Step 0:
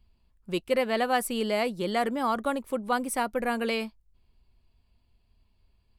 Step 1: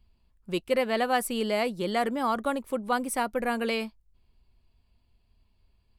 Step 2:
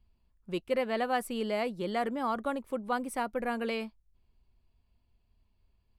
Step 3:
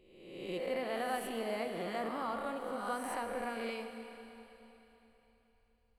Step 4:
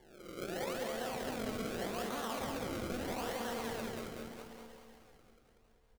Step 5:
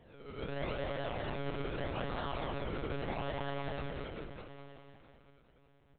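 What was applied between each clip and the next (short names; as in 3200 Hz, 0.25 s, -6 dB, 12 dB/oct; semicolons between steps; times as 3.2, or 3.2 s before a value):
nothing audible
high shelf 3800 Hz -7 dB; gain -4 dB
spectral swells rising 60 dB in 1.08 s; Schroeder reverb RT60 3.6 s, combs from 27 ms, DRR 6 dB; gain -9 dB
limiter -34.5 dBFS, peak gain reduction 10.5 dB; decimation with a swept rate 34×, swing 100% 0.81 Hz; feedback echo 0.191 s, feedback 42%, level -3.5 dB; gain +2.5 dB
monotone LPC vocoder at 8 kHz 140 Hz; gain +1.5 dB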